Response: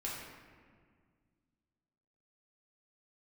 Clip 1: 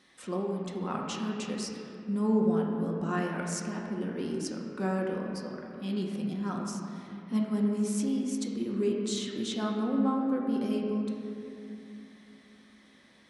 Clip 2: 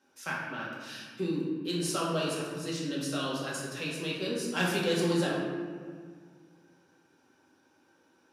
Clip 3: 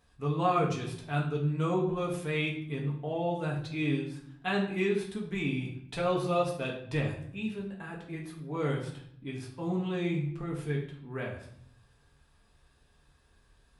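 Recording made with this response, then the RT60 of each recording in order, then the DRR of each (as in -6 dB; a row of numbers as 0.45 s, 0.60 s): 2; 2.8 s, 1.9 s, 0.65 s; -2.0 dB, -6.0 dB, -2.5 dB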